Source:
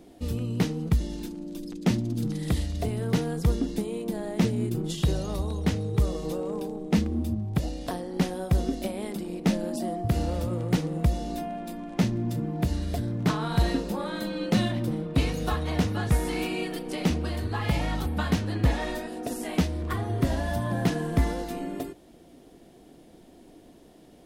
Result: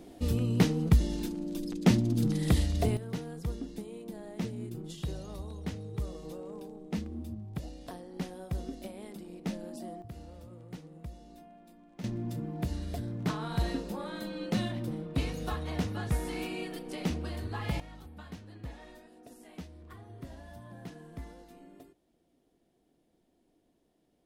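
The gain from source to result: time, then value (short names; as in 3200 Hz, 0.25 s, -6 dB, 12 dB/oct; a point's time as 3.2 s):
+1 dB
from 2.97 s -11.5 dB
from 10.02 s -20 dB
from 12.04 s -7 dB
from 17.8 s -20 dB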